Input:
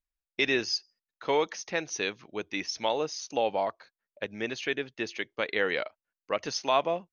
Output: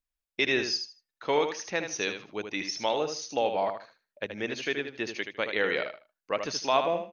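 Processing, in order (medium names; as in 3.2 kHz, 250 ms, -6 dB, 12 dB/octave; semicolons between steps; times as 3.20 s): feedback delay 77 ms, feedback 21%, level -7.5 dB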